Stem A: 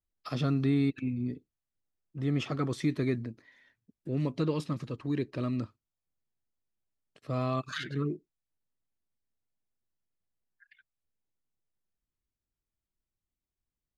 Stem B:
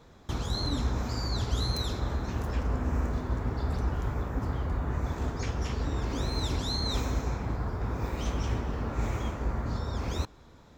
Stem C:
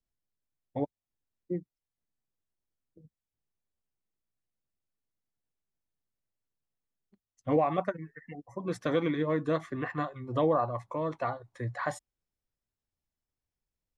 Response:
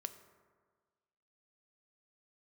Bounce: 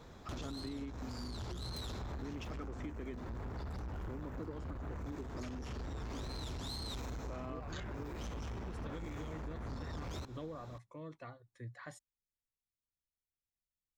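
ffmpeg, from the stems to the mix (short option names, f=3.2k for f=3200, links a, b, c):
-filter_complex "[0:a]highpass=f=190:w=0.5412,highpass=f=190:w=1.3066,afwtdn=0.00562,lowpass=f=6.9k:t=q:w=4.9,volume=-7.5dB[a];[1:a]acompressor=threshold=-30dB:ratio=6,asoftclip=type=tanh:threshold=-36dB,volume=0.5dB[b];[2:a]equalizer=f=830:t=o:w=1.5:g=-11.5,volume=-10.5dB[c];[a][b][c]amix=inputs=3:normalize=0,acompressor=threshold=-40dB:ratio=6"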